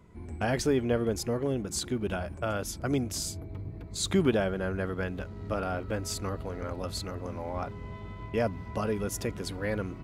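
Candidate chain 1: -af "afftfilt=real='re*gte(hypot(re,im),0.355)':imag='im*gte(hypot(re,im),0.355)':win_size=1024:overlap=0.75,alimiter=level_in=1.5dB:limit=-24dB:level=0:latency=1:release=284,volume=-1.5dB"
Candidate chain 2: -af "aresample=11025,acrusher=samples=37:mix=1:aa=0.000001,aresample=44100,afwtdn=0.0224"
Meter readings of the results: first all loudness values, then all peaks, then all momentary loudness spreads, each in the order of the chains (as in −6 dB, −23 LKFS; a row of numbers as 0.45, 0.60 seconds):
−39.5, −34.5 LKFS; −25.5, −13.5 dBFS; 10, 12 LU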